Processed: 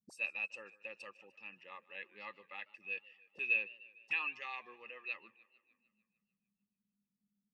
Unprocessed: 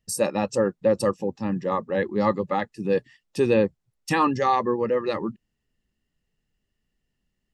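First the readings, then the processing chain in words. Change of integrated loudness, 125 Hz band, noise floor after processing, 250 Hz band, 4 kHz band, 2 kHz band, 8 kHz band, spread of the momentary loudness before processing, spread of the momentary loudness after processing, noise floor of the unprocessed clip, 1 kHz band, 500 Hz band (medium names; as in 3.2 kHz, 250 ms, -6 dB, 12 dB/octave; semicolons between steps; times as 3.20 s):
-15.5 dB, under -40 dB, under -85 dBFS, -38.5 dB, -13.5 dB, -4.0 dB, under -25 dB, 7 LU, 19 LU, -79 dBFS, -26.0 dB, -33.0 dB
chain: auto-wah 200–2600 Hz, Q 18, up, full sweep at -28 dBFS; modulated delay 150 ms, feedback 60%, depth 122 cents, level -21 dB; trim +6 dB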